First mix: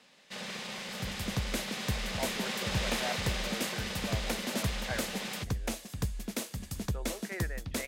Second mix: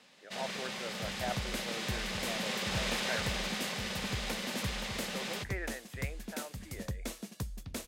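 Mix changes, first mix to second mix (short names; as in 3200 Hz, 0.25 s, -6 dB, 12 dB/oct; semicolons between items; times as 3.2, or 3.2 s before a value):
speech: entry -1.80 s; second sound -5.0 dB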